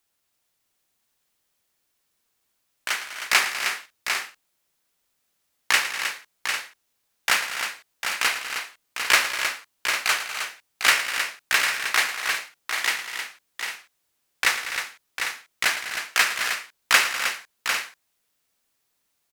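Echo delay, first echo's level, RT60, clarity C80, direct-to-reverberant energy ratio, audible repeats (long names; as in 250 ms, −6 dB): 111 ms, −13.0 dB, no reverb audible, no reverb audible, no reverb audible, 6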